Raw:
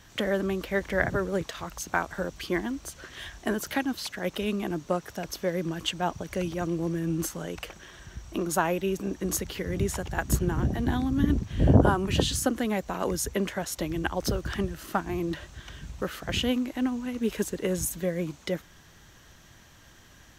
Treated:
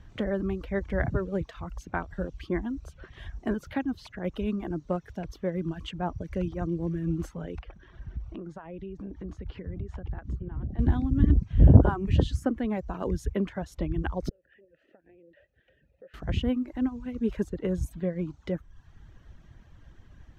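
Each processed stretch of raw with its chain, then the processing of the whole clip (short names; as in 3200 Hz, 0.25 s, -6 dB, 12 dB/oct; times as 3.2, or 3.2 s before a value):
7.59–10.79 compressor 5:1, threshold -35 dBFS + air absorption 110 m
14.29–16.14 compressor 10:1, threshold -34 dBFS + vowel filter e
whole clip: RIAA curve playback; reverb removal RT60 0.7 s; tone controls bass -2 dB, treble -3 dB; gain -5 dB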